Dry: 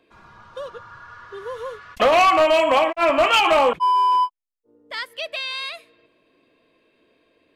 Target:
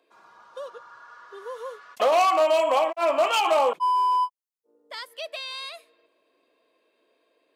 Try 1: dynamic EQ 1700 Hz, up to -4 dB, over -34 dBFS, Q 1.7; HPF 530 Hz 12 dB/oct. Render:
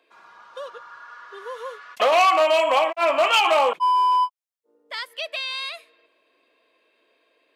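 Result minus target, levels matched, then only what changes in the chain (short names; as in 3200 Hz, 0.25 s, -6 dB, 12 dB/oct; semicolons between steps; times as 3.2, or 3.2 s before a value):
2000 Hz band +4.5 dB
add after HPF: bell 2300 Hz -8 dB 2 oct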